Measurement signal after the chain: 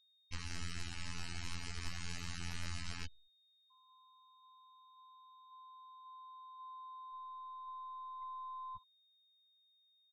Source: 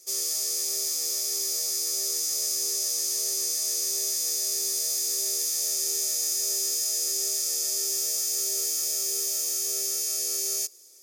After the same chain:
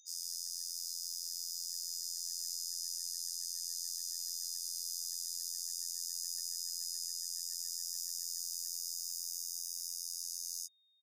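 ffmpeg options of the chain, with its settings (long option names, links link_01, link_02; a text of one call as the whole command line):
ffmpeg -i in.wav -filter_complex "[0:a]acrossover=split=350|3000[link_01][link_02][link_03];[link_02]acompressor=threshold=-33dB:ratio=6[link_04];[link_01][link_04][link_03]amix=inputs=3:normalize=0,highshelf=frequency=8000:gain=-8.5,acompressor=mode=upward:threshold=-36dB:ratio=2.5,afftfilt=real='hypot(re,im)*cos(PI*b)':imag='0':win_size=2048:overlap=0.75,aeval=exprs='0.266*(cos(1*acos(clip(val(0)/0.266,-1,1)))-cos(1*PI/2))+0.0944*(cos(2*acos(clip(val(0)/0.266,-1,1)))-cos(2*PI/2))+0.00944*(cos(5*acos(clip(val(0)/0.266,-1,1)))-cos(5*PI/2))':channel_layout=same,equalizer=frequency=460:width_type=o:width=2.6:gain=-14.5,asplit=2[link_05][link_06];[link_06]aecho=0:1:65|130|195|260|325:0.126|0.0755|0.0453|0.0272|0.0163[link_07];[link_05][link_07]amix=inputs=2:normalize=0,afftfilt=real='re*gte(hypot(re,im),0.0141)':imag='im*gte(hypot(re,im),0.0141)':win_size=1024:overlap=0.75,anlmdn=0.000158,aeval=exprs='val(0)+0.00126*sin(2*PI*3700*n/s)':channel_layout=same,bandreject=frequency=3500:width=5.3,volume=-6.5dB" out.wav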